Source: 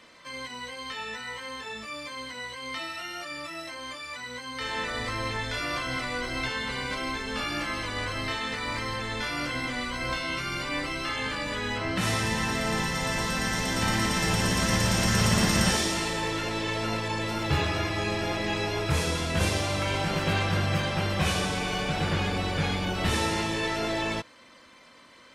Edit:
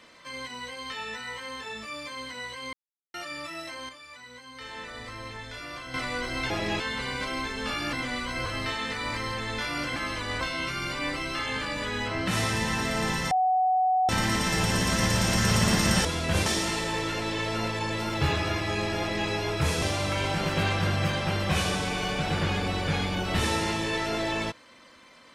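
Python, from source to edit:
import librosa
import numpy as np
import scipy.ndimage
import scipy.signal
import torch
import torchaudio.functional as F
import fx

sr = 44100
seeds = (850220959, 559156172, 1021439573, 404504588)

y = fx.edit(x, sr, fx.silence(start_s=2.73, length_s=0.41),
    fx.clip_gain(start_s=3.89, length_s=2.05, db=-8.5),
    fx.swap(start_s=7.63, length_s=0.45, other_s=9.58, other_length_s=0.53),
    fx.bleep(start_s=13.01, length_s=0.78, hz=745.0, db=-20.0),
    fx.duplicate(start_s=18.28, length_s=0.3, to_s=6.5),
    fx.move(start_s=19.11, length_s=0.41, to_s=15.75), tone=tone)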